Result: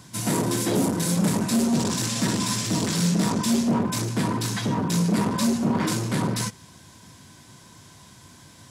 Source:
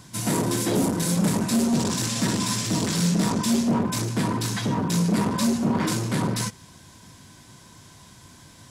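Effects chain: high-pass 63 Hz

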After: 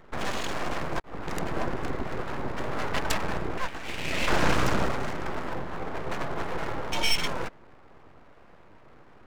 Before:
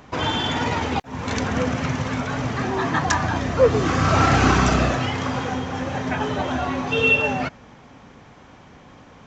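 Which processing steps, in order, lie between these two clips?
local Wiener filter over 15 samples; 3.58–4.28 s: high-pass 820 Hz 12 dB/octave; full-wave rectifier; trim -3.5 dB

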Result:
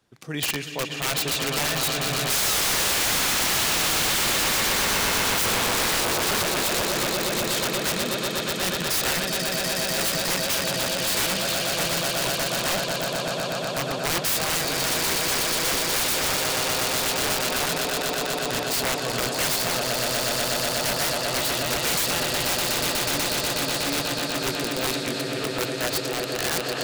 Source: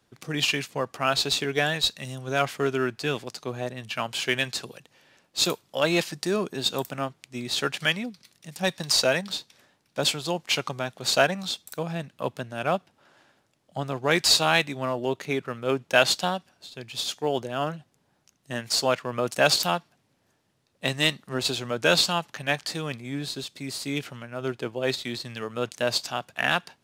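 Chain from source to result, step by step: painted sound fall, 2.30–3.57 s, 320–1700 Hz -16 dBFS; echo with a slow build-up 122 ms, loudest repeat 8, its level -8.5 dB; integer overflow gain 17 dB; trim -1 dB

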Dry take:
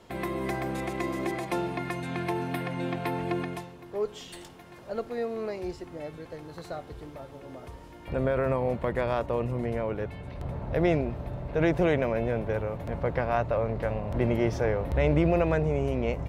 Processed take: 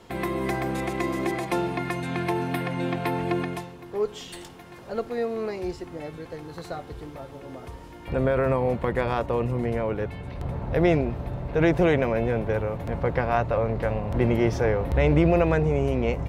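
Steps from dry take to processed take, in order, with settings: band-stop 610 Hz, Q 12; trim +4 dB

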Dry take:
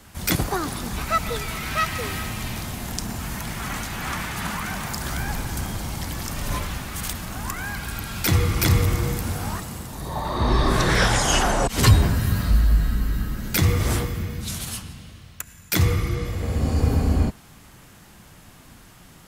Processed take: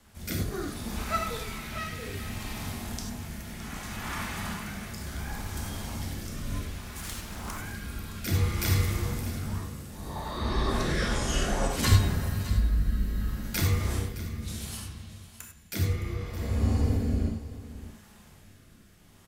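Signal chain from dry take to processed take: 15.85–16.35 s: tone controls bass -3 dB, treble -5 dB; gated-style reverb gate 120 ms flat, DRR 0 dB; rotary cabinet horn 0.65 Hz; on a send: delay 615 ms -15 dB; 7.02–7.58 s: on the sum: loudspeaker Doppler distortion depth 0.71 ms; trim -8.5 dB

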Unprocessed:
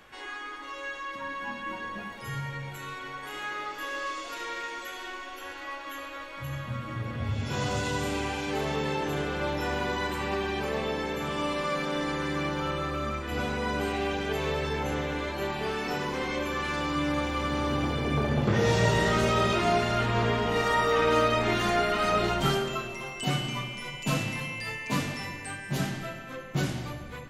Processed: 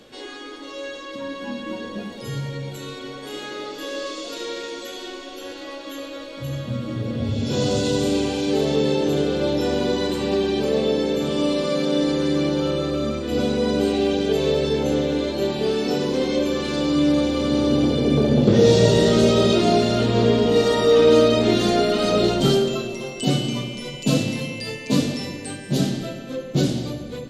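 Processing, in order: graphic EQ 125/250/500/1000/2000/4000/8000 Hz +4/+11/+11/-5/-5/+11/+5 dB

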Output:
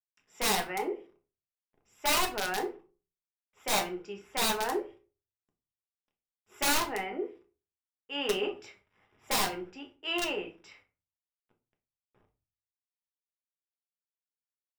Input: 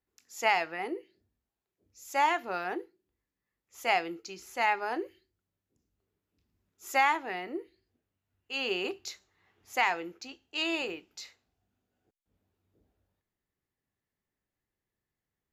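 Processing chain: wide varispeed 1.05×; bit crusher 11-bit; Savitzky-Golay filter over 25 samples; integer overflow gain 23 dB; on a send: reverberation RT60 0.35 s, pre-delay 5 ms, DRR 2.5 dB

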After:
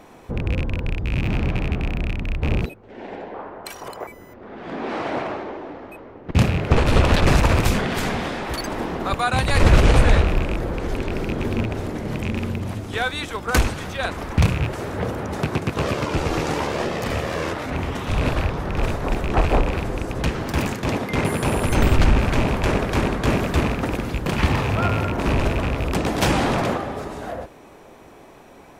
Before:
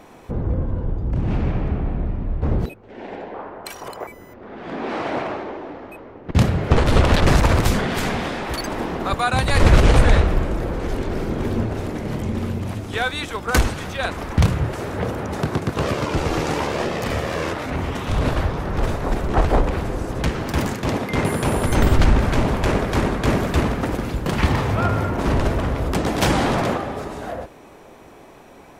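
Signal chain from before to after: rattle on loud lows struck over -20 dBFS, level -17 dBFS; trim -1 dB

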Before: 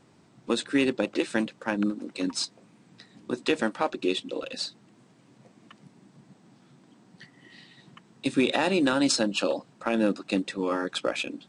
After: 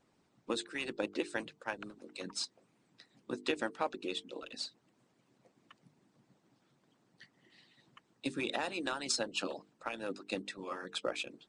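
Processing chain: harmonic-percussive split harmonic -18 dB; hum notches 50/100/150/200/250/300/350/400/450 Hz; trim -7 dB

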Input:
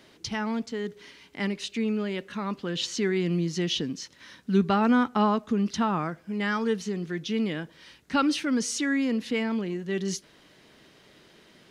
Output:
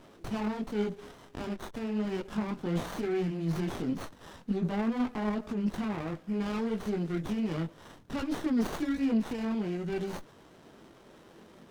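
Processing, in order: high-pass 75 Hz; band-stop 1.5 kHz, Q 17; in parallel at -2 dB: compressor with a negative ratio -28 dBFS; on the sum: peak limiter -21.5 dBFS, peak gain reduction 12 dB; 1.45–2.05 s: power-law waveshaper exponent 2; chorus voices 4, 1.3 Hz, delay 21 ms, depth 3 ms; sliding maximum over 17 samples

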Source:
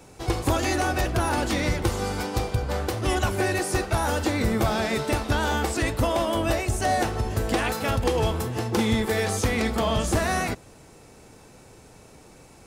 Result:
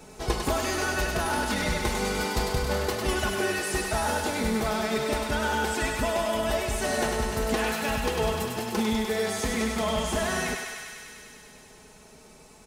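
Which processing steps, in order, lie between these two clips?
comb 4.7 ms, depth 66%; gain riding 0.5 s; thinning echo 100 ms, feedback 82%, high-pass 610 Hz, level -4 dB; trim -5 dB

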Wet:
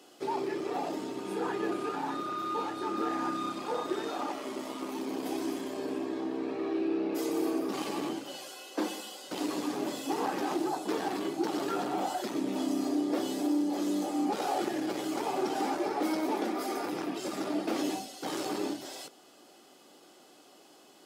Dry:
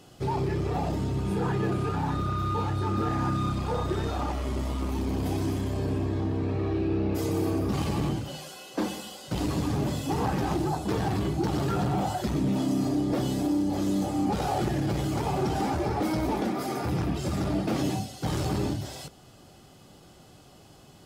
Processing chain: Chebyshev high-pass 290 Hz, order 3; trim -1.5 dB

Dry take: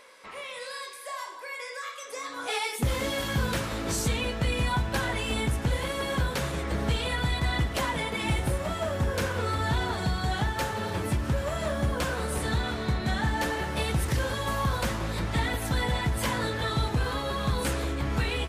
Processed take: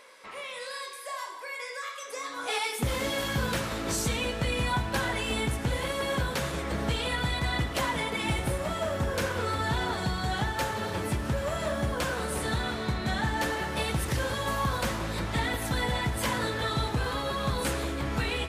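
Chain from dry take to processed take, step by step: bass shelf 130 Hz -5 dB; reverberation RT60 1.3 s, pre-delay 30 ms, DRR 13 dB

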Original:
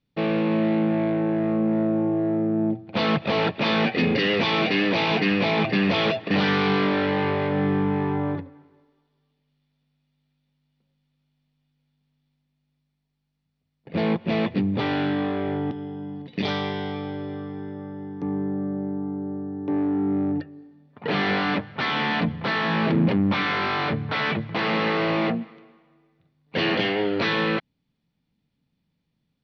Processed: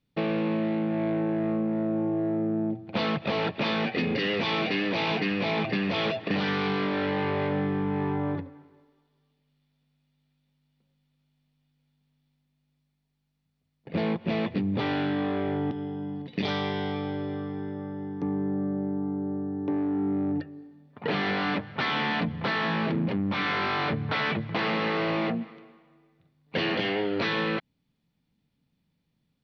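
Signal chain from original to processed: compression, threshold -24 dBFS, peak gain reduction 8.5 dB

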